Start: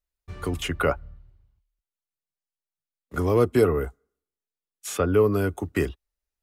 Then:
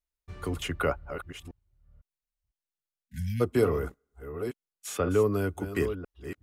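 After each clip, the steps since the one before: reverse delay 0.504 s, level -10 dB; spectral delete 3.06–3.41, 240–1500 Hz; gain -4.5 dB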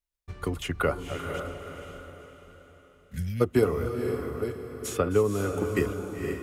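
transient shaper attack +6 dB, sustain +2 dB; on a send: diffused feedback echo 0.498 s, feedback 42%, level -6 dB; on the sum: gain -1.5 dB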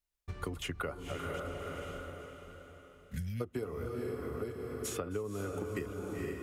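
compressor 6:1, threshold -35 dBFS, peak gain reduction 17.5 dB

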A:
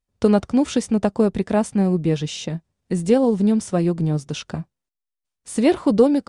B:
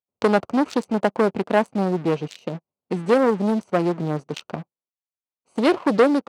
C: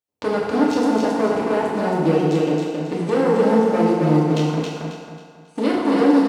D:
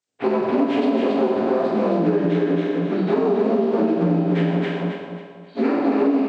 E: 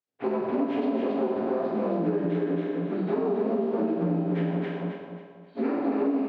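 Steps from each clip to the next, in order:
Wiener smoothing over 25 samples; sample leveller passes 2; weighting filter A
limiter -14.5 dBFS, peak gain reduction 11 dB; on a send: feedback echo 0.271 s, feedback 35%, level -3 dB; on the sum: FDN reverb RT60 1.4 s, low-frequency decay 0.7×, high-frequency decay 0.85×, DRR -4.5 dB
inharmonic rescaling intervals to 79%; compressor, threshold -21 dBFS, peak gain reduction 9.5 dB; gain +5.5 dB
LPF 2000 Hz 6 dB/oct; gain -7 dB

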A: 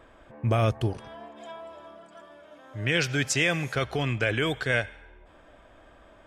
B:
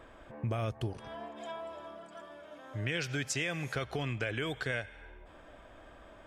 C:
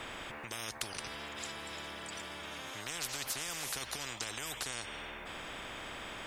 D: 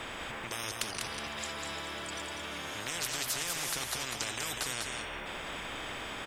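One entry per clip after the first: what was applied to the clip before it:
compressor 3:1, threshold -34 dBFS, peak gain reduction 11.5 dB
spectral compressor 10:1; gain +1.5 dB
echo 0.197 s -4.5 dB; gain +3 dB

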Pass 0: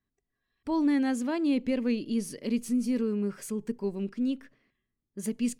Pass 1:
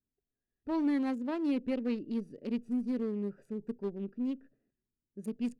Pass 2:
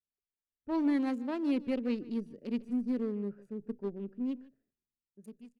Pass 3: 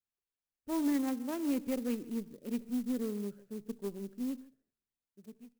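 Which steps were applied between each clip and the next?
Wiener smoothing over 41 samples; tone controls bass -4 dB, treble -4 dB; gain -2.5 dB
ending faded out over 0.70 s; outdoor echo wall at 26 m, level -18 dB; three-band expander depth 40%
on a send at -22 dB: reverb RT60 0.35 s, pre-delay 62 ms; on the sum: clock jitter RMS 0.058 ms; gain -2 dB

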